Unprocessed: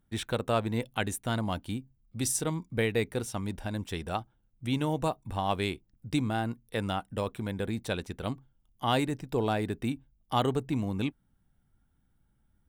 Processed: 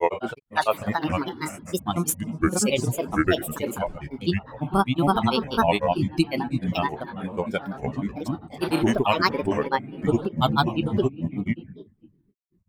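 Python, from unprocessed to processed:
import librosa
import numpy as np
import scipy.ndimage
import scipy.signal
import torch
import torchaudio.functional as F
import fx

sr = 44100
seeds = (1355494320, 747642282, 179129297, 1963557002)

y = fx.noise_reduce_blind(x, sr, reduce_db=16)
y = fx.room_shoebox(y, sr, seeds[0], volume_m3=1000.0, walls='mixed', distance_m=0.58)
y = fx.granulator(y, sr, seeds[1], grain_ms=100.0, per_s=20.0, spray_ms=531.0, spread_st=7)
y = y * librosa.db_to_amplitude(9.0)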